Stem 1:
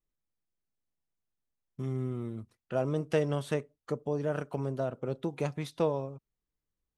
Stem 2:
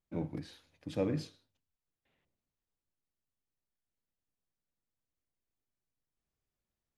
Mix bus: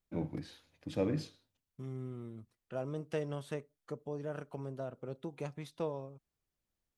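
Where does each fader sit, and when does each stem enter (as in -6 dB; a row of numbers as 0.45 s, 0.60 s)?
-8.5 dB, 0.0 dB; 0.00 s, 0.00 s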